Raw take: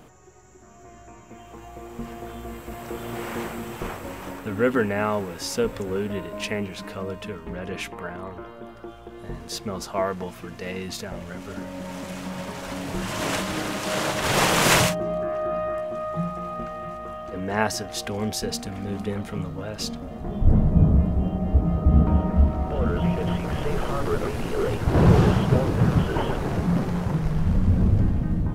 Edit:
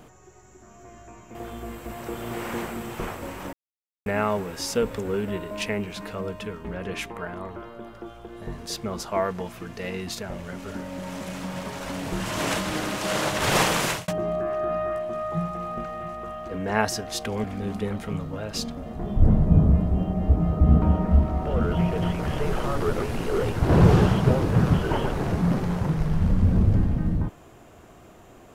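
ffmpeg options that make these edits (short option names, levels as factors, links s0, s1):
-filter_complex "[0:a]asplit=6[s0][s1][s2][s3][s4][s5];[s0]atrim=end=1.352[s6];[s1]atrim=start=2.168:end=4.35,asetpts=PTS-STARTPTS,afade=t=out:st=2.178:d=0.004:c=hsin[s7];[s2]atrim=start=4.35:end=4.88,asetpts=PTS-STARTPTS,volume=0[s8];[s3]atrim=start=4.88:end=14.9,asetpts=PTS-STARTPTS,afade=t=in:d=0.004:c=hsin,afade=t=out:st=9.52:d=0.5[s9];[s4]atrim=start=14.9:end=18.262,asetpts=PTS-STARTPTS,afade=t=in:d=0.004:c=hsin[s10];[s5]atrim=start=18.688[s11];[s7][s8][s9][s10]concat=n=4:v=0:a=1[s12];[s6][s12]acrossfade=d=0.004:c1=hsin:c2=hsin[s13];[s13][s11]acrossfade=d=0.004:c1=hsin:c2=hsin"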